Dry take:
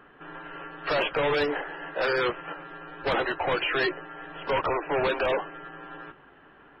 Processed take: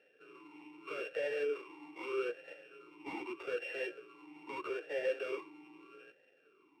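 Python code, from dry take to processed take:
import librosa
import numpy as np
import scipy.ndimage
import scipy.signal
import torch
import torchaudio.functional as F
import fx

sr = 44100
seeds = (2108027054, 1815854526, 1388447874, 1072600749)

y = np.r_[np.sort(x[:len(x) // 16 * 16].reshape(-1, 16), axis=1).ravel(), x[len(x) // 16 * 16:]]
y = fx.vowel_sweep(y, sr, vowels='e-u', hz=0.8)
y = y * librosa.db_to_amplitude(-2.5)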